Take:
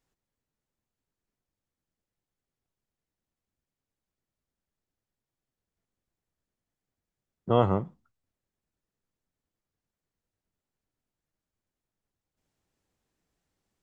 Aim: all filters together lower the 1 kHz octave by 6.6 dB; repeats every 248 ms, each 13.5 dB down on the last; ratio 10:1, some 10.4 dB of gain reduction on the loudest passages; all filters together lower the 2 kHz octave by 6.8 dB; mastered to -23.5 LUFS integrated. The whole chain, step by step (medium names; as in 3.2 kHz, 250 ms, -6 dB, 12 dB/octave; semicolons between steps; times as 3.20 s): peaking EQ 1 kHz -8 dB; peaking EQ 2 kHz -6.5 dB; compression 10:1, threshold -28 dBFS; feedback delay 248 ms, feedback 21%, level -13.5 dB; trim +14.5 dB